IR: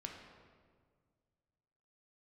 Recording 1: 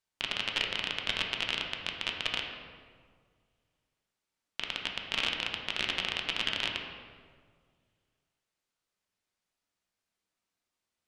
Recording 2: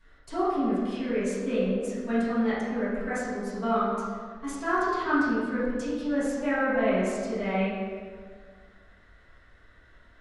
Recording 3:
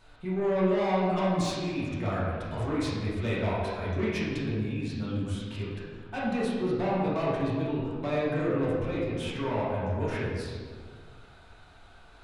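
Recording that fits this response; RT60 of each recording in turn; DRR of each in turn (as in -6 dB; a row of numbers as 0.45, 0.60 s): 1; 1.8, 1.8, 1.8 s; 1.0, -14.0, -8.0 dB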